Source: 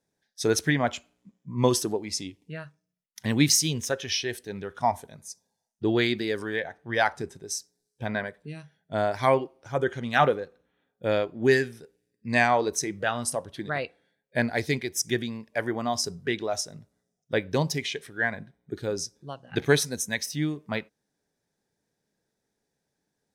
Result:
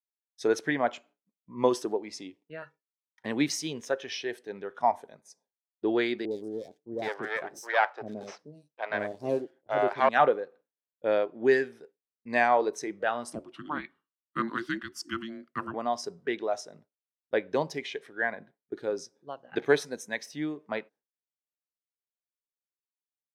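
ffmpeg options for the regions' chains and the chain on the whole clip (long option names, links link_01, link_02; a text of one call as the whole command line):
ffmpeg -i in.wav -filter_complex "[0:a]asettb=1/sr,asplit=3[link_01][link_02][link_03];[link_01]atrim=end=2.624[link_04];[link_02]atrim=start=2.62:end=3.25,asetpts=PTS-STARTPTS,afade=type=in:duration=0.004:curve=qsin,afade=type=out:start_time=0.626:duration=0.004:curve=qsin,acrossover=split=2700[link_05][link_06];[link_06]acompressor=threshold=-54dB:ratio=4:attack=1:release=60[link_07];[link_05][link_07]amix=inputs=2:normalize=0,equalizer=frequency=1700:width_type=o:width=0.37:gain=4.5,aecho=1:1:2.2:0.68,atrim=end_sample=27783[link_08];[link_03]atrim=start=3.246[link_09];[link_04][link_08]acrossfade=duration=0.004:curve1=hsin:curve2=qsin[link_10];[link_10][link_09]acrossfade=duration=0.004:curve1=qsin:curve2=hsin,asettb=1/sr,asplit=3[link_11][link_12][link_13];[link_11]atrim=end=6.254[link_14];[link_12]atrim=start=6.25:end=10.09,asetpts=PTS-STARTPTS,afade=type=in:duration=0.004:curve=qsin,afade=type=out:start_time=3.836:duration=0.004:curve=qsin,aeval=exprs='if(lt(val(0),0),0.251*val(0),val(0))':channel_layout=same,acontrast=29,acrossover=split=480|5100[link_15][link_16][link_17];[link_17]adelay=60[link_18];[link_16]adelay=770[link_19];[link_15][link_19][link_18]amix=inputs=3:normalize=0,atrim=end_sample=169344[link_20];[link_13]atrim=start=10.086[link_21];[link_14][link_20]acrossfade=duration=0.004:curve1=hsin:curve2=qsin[link_22];[link_22][link_21]acrossfade=duration=0.004:curve1=qsin:curve2=hsin,asettb=1/sr,asplit=3[link_23][link_24][link_25];[link_23]atrim=end=13.334[link_26];[link_24]atrim=start=13.33:end=15.74,asetpts=PTS-STARTPTS,afade=type=in:duration=0.004:curve=qsin,afade=type=out:start_time=2.406:duration=0.004:curve=qsin,deesser=0.3,afreqshift=-460[link_27];[link_25]atrim=start=15.736[link_28];[link_26][link_27]acrossfade=duration=0.004:curve1=hsin:curve2=qsin[link_29];[link_29][link_28]acrossfade=duration=0.004:curve1=qsin:curve2=hsin,highpass=360,agate=range=-33dB:threshold=-49dB:ratio=3:detection=peak,lowpass=frequency=1200:poles=1,volume=1.5dB" out.wav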